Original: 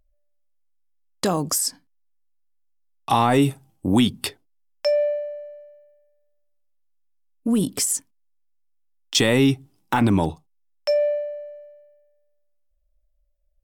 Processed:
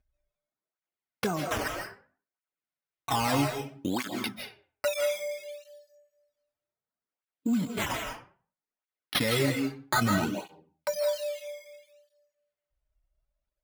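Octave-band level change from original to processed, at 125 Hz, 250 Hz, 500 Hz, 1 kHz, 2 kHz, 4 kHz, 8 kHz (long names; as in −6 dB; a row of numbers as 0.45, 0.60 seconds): −8.5, −9.0, −8.0, −6.5, −2.0, −6.5, −12.0 decibels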